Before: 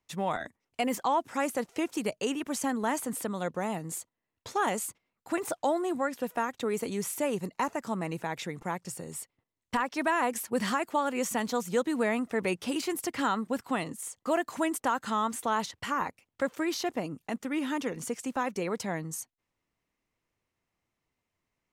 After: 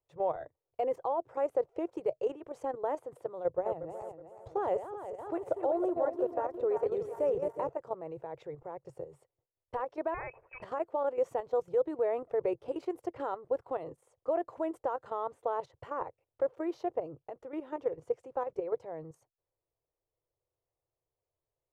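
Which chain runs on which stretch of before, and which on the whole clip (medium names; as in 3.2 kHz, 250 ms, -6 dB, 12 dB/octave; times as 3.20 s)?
3.46–7.69 s: backward echo that repeats 185 ms, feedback 65%, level -5.5 dB + high-pass 42 Hz + bass shelf 110 Hz +11.5 dB
10.14–10.62 s: block-companded coder 5-bit + frequency inversion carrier 2.8 kHz
whole clip: tone controls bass 0 dB, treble -4 dB; level held to a coarse grid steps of 10 dB; FFT filter 140 Hz 0 dB, 210 Hz -26 dB, 340 Hz -1 dB, 510 Hz +7 dB, 1.8 kHz -15 dB, 14 kHz -27 dB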